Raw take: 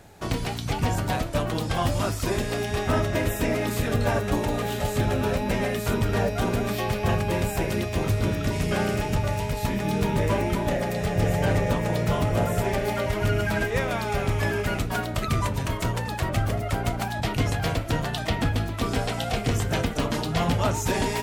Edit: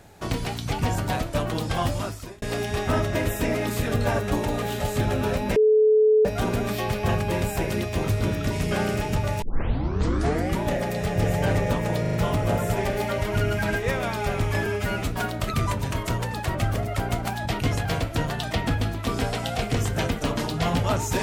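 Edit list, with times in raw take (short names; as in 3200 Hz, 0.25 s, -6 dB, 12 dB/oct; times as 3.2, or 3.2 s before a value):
1.82–2.42 fade out
5.56–6.25 bleep 431 Hz -14 dBFS
9.42 tape start 1.19 s
12.01 stutter 0.04 s, 4 plays
14.54–14.81 stretch 1.5×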